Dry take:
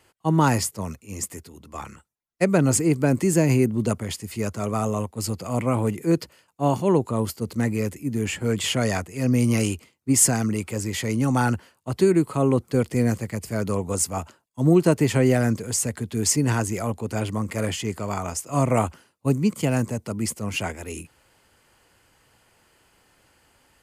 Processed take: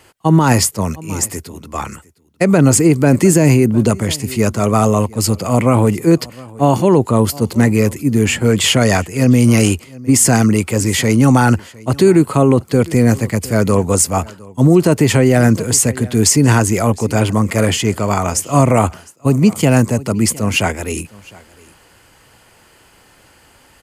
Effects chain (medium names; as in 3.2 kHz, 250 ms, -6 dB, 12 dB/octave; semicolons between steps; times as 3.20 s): delay 708 ms -23.5 dB; loudness maximiser +13 dB; trim -1 dB